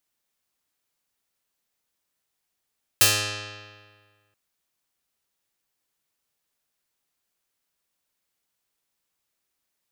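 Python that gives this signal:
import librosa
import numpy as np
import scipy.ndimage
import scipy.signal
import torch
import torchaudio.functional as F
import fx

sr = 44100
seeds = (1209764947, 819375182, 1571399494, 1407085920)

y = fx.pluck(sr, length_s=1.33, note=44, decay_s=1.68, pick=0.45, brightness='medium')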